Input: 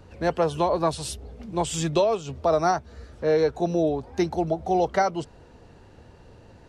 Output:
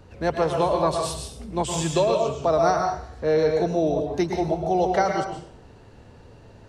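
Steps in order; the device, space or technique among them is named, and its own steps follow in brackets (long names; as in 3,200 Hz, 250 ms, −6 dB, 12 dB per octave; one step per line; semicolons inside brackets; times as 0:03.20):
bathroom (convolution reverb RT60 0.60 s, pre-delay 106 ms, DRR 2.5 dB)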